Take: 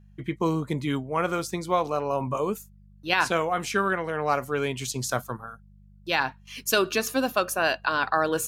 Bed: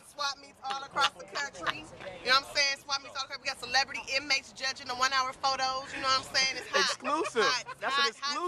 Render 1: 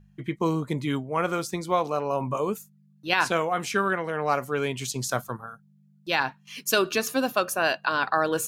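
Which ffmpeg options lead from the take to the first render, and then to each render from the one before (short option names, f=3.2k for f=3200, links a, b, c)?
-af "bandreject=f=50:t=h:w=4,bandreject=f=100:t=h:w=4"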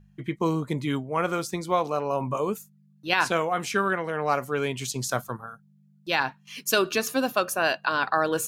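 -af anull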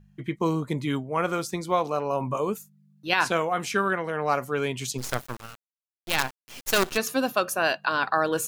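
-filter_complex "[0:a]asplit=3[a][b][c];[a]afade=t=out:st=4.97:d=0.02[d];[b]acrusher=bits=4:dc=4:mix=0:aa=0.000001,afade=t=in:st=4.97:d=0.02,afade=t=out:st=6.96:d=0.02[e];[c]afade=t=in:st=6.96:d=0.02[f];[d][e][f]amix=inputs=3:normalize=0"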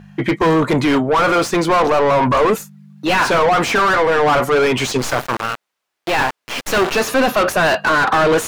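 -filter_complex "[0:a]asplit=2[a][b];[b]highpass=f=720:p=1,volume=36dB,asoftclip=type=tanh:threshold=-5dB[c];[a][c]amix=inputs=2:normalize=0,lowpass=f=1.5k:p=1,volume=-6dB"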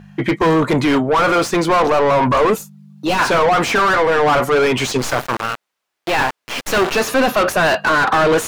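-filter_complex "[0:a]asettb=1/sr,asplit=3[a][b][c];[a]atrim=end=2.554[d];[b]atrim=start=2.55:end=3.19,asetpts=PTS-STARTPTS,afade=t=in:d=0.004:c=qsin,afade=t=out:st=0.636:d=0.004:c=qsin,equalizer=f=1.8k:w=1.5:g=-9[e];[c]atrim=start=3.186[f];[d][e]acrossfade=d=0.004:c1=hsin:c2=qsin[g];[g][f]acrossfade=d=0.004:c1=qsin:c2=hsin"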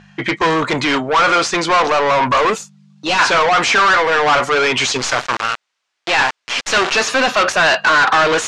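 -af "lowpass=f=7.3k:w=0.5412,lowpass=f=7.3k:w=1.3066,tiltshelf=f=760:g=-6.5"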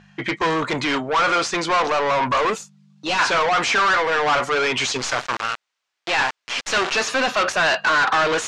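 -af "volume=-5.5dB"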